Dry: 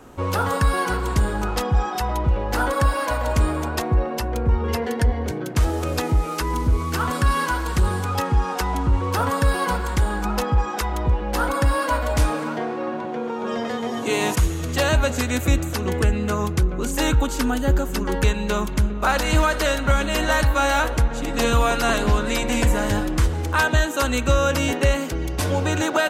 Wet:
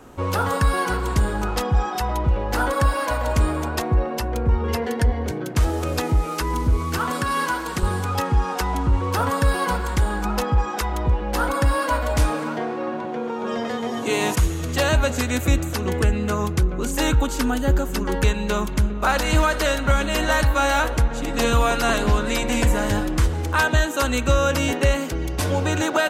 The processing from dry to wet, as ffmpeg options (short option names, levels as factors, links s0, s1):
-filter_complex "[0:a]asettb=1/sr,asplit=3[s0][s1][s2];[s0]atrim=end=6.984[s3];[s1]atrim=start=6.98:end=7.83,asetpts=PTS-STARTPTS,afade=t=in:d=0.004:c=qsin,afade=t=out:st=0.846:d=0.004:c=qsin,highpass=150[s4];[s2]atrim=start=7.826[s5];[s3][s4]acrossfade=d=0.004:c1=hsin:c2=qsin[s6];[s6][s5]acrossfade=d=0.004:c1=qsin:c2=hsin"